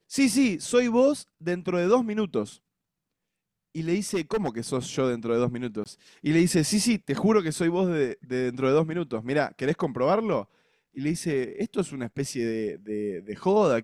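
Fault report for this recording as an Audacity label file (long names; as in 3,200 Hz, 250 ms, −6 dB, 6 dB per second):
4.140000	4.480000	clipping −21 dBFS
5.840000	5.860000	drop-out 18 ms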